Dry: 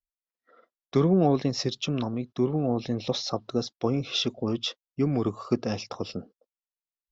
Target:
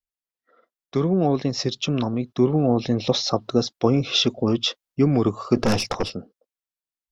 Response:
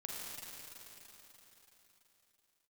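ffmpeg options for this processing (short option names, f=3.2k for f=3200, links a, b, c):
-filter_complex "[0:a]asplit=3[a][b][c];[a]afade=t=out:st=5.55:d=0.02[d];[b]aeval=exprs='0.141*(cos(1*acos(clip(val(0)/0.141,-1,1)))-cos(1*PI/2))+0.0398*(cos(5*acos(clip(val(0)/0.141,-1,1)))-cos(5*PI/2))+0.0316*(cos(6*acos(clip(val(0)/0.141,-1,1)))-cos(6*PI/2))':c=same,afade=t=in:st=5.55:d=0.02,afade=t=out:st=6.08:d=0.02[e];[c]afade=t=in:st=6.08:d=0.02[f];[d][e][f]amix=inputs=3:normalize=0,dynaudnorm=f=290:g=11:m=11.5dB,volume=-1.5dB"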